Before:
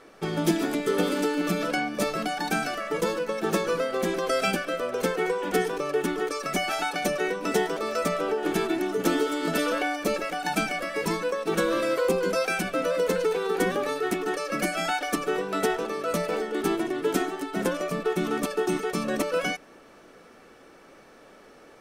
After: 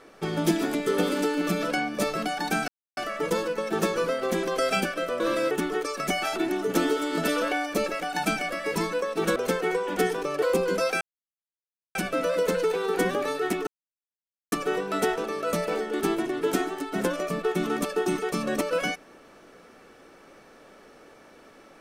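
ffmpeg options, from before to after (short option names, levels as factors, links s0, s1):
-filter_complex "[0:a]asplit=10[s0][s1][s2][s3][s4][s5][s6][s7][s8][s9];[s0]atrim=end=2.68,asetpts=PTS-STARTPTS,afade=t=out:st=2.676:d=0.004:c=hsin,apad=pad_dur=0.29[s10];[s1]atrim=start=2.68:end=4.912,asetpts=PTS-STARTPTS,afade=t=in:d=0.004:c=hsin[s11];[s2]atrim=start=11.658:end=11.972[s12];[s3]atrim=start=5.968:end=6.822[s13];[s4]atrim=start=8.658:end=11.662[s14];[s5]atrim=start=4.908:end=5.972[s15];[s6]atrim=start=11.968:end=12.56,asetpts=PTS-STARTPTS,afade=t=out:st=0.588:d=0.004:c=hsin,apad=pad_dur=0.94[s16];[s7]atrim=start=12.56:end=14.28,asetpts=PTS-STARTPTS,afade=t=in:d=0.004:c=hsin,afade=t=out:st=1.716:d=0.004:c=hsin[s17];[s8]atrim=start=14.28:end=15.13,asetpts=PTS-STARTPTS,volume=0[s18];[s9]atrim=start=15.13,asetpts=PTS-STARTPTS,afade=t=in:d=0.004:c=hsin[s19];[s10][s11]concat=n=2:v=0:a=1[s20];[s20][s12]acrossfade=d=0.004:c1=hsin:c2=hsin[s21];[s21][s13]acrossfade=d=0.004:c1=hsin:c2=hsin[s22];[s22][s14]acrossfade=d=0.004:c1=hsin:c2=hsin[s23];[s23][s15]acrossfade=d=0.004:c1=hsin:c2=hsin[s24];[s16][s17][s18][s19]concat=n=4:v=0:a=1[s25];[s24][s25]acrossfade=d=0.004:c1=hsin:c2=hsin"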